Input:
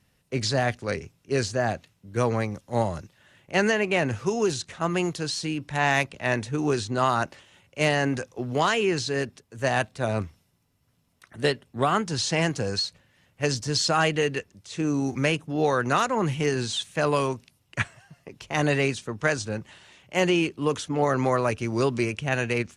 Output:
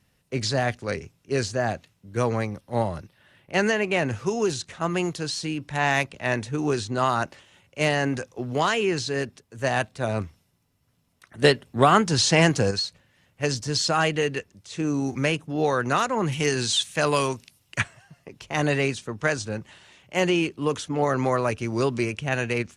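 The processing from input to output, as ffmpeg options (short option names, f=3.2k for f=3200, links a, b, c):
-filter_complex "[0:a]asettb=1/sr,asplit=3[a][b][c];[a]atrim=end=2.504[d];[b]atrim=start=2.5:end=3.54,asetpts=PTS-STARTPTS,afade=t=in:d=0.004:c=qsin,afade=t=out:st=1.036:d=0.004:c=qsin,equalizer=f=6.9k:t=o:w=0.37:g=-12[e];[c]atrim=start=3.536[f];[d][e]acrossfade=d=0.004:c1=hsin:c2=qsin[g];[g][f]acrossfade=d=0.004:c1=qsin:c2=hsin,asettb=1/sr,asplit=3[h][i][j];[h]atrim=end=16.324[k];[i]atrim=start=16.32:end=17.81,asetpts=PTS-STARTPTS,afade=t=in:d=0.004:c=qsin,afade=t=out:st=1.486:d=0.004:c=qsin,highshelf=f=2.1k:g=8[l];[j]atrim=start=17.806[m];[k][l]acrossfade=d=0.004:c1=hsin:c2=qsin[n];[n][m]acrossfade=d=0.004:c1=qsin:c2=hsin,asplit=3[o][p][q];[o]atrim=end=11.422[r];[p]atrim=start=11.418:end=12.712,asetpts=PTS-STARTPTS,volume=6dB[s];[q]atrim=start=12.708[t];[r][s]acrossfade=d=0.004:c1=hsin:c2=hsin[u];[u][t]acrossfade=d=0.004:c1=hsin:c2=hsin"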